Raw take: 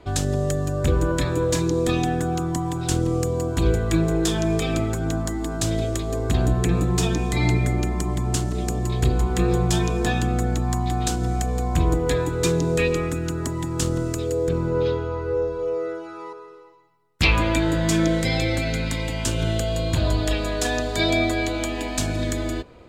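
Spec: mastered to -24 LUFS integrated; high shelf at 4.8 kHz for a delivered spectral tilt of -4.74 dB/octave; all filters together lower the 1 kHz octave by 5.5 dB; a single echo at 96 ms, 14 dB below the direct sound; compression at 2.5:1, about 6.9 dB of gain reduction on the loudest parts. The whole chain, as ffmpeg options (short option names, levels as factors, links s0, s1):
-af "equalizer=f=1000:t=o:g=-8.5,highshelf=f=4800:g=6.5,acompressor=threshold=0.0562:ratio=2.5,aecho=1:1:96:0.2,volume=1.5"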